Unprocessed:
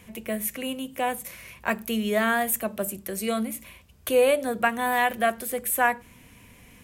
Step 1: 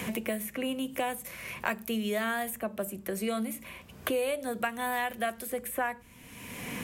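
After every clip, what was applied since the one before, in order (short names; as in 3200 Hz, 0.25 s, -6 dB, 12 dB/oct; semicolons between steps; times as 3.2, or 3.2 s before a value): three-band squash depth 100%; gain -7 dB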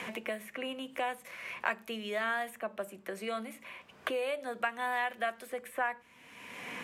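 band-pass 1400 Hz, Q 0.53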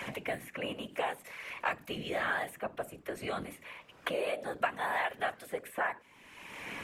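whisperiser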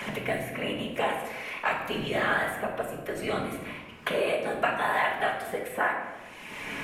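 shoebox room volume 690 m³, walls mixed, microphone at 1.4 m; gain +4 dB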